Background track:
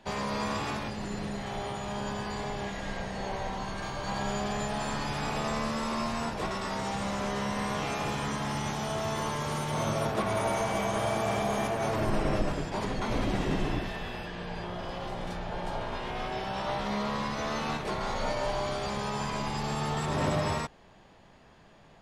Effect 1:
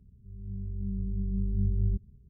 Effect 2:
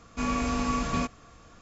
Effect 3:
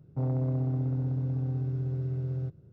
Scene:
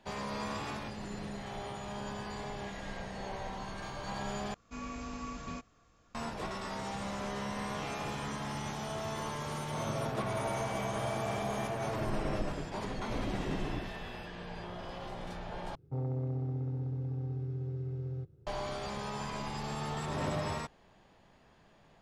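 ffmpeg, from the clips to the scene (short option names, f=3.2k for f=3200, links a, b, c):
-filter_complex "[3:a]asplit=2[a][b];[0:a]volume=-6dB[c];[b]aecho=1:1:2.4:0.45[d];[c]asplit=3[e][f][g];[e]atrim=end=4.544[h];[2:a]atrim=end=1.61,asetpts=PTS-STARTPTS,volume=-13.5dB[i];[f]atrim=start=6.146:end=15.754[j];[d]atrim=end=2.72,asetpts=PTS-STARTPTS,volume=-5.5dB[k];[g]atrim=start=18.466[l];[a]atrim=end=2.72,asetpts=PTS-STARTPTS,volume=-15.5dB,afade=t=in:d=0.004:c=hsin,afade=t=out:st=2.716:d=0.004:c=hsin,adelay=9710[m];[h][i]acrossfade=d=0.004:c1=hsin:c2=hsin[n];[n][j]acrossfade=d=0.004:c1=hsin:c2=hsin[o];[o][k]acrossfade=d=0.004:c1=hsin:c2=hsin[p];[p][l]acrossfade=d=0.004:c1=hsin:c2=hsin[q];[q][m]amix=inputs=2:normalize=0"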